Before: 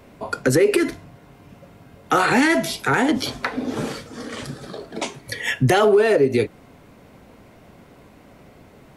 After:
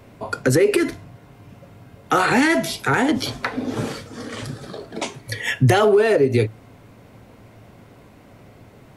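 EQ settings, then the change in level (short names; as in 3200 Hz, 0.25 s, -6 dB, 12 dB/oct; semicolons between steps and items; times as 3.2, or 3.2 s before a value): bell 110 Hz +11 dB 0.25 oct; 0.0 dB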